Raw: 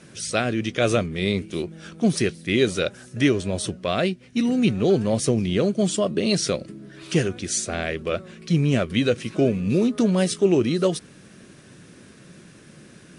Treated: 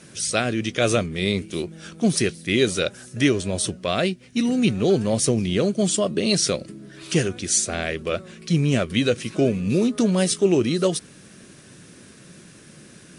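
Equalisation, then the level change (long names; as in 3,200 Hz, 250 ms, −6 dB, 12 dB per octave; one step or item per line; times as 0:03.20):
high-shelf EQ 4,800 Hz +7.5 dB
0.0 dB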